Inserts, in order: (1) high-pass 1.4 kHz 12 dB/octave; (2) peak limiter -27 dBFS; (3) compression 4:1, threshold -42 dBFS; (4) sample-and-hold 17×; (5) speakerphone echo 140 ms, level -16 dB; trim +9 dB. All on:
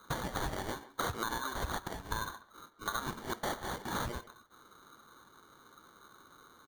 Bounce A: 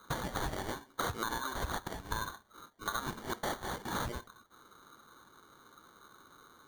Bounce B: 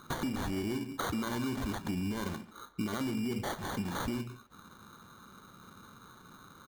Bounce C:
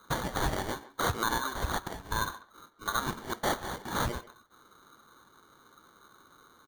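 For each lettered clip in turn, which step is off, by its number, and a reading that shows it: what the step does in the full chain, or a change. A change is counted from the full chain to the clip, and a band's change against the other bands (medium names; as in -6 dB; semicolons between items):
5, echo-to-direct -24.5 dB to none; 1, crest factor change -5.5 dB; 3, mean gain reduction 2.0 dB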